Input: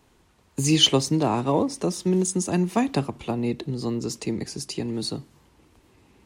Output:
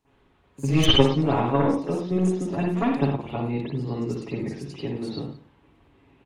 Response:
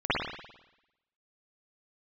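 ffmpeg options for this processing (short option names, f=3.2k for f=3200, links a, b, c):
-filter_complex "[0:a]aecho=1:1:175:0.0944,aeval=exprs='0.668*(cos(1*acos(clip(val(0)/0.668,-1,1)))-cos(1*PI/2))+0.133*(cos(3*acos(clip(val(0)/0.668,-1,1)))-cos(3*PI/2))+0.335*(cos(4*acos(clip(val(0)/0.668,-1,1)))-cos(4*PI/2))+0.0299*(cos(5*acos(clip(val(0)/0.668,-1,1)))-cos(5*PI/2))+0.15*(cos(6*acos(clip(val(0)/0.668,-1,1)))-cos(6*PI/2))':c=same[a];[1:a]atrim=start_sample=2205,afade=t=out:st=0.22:d=0.01,atrim=end_sample=10143[b];[a][b]afir=irnorm=-1:irlink=0,volume=-10dB"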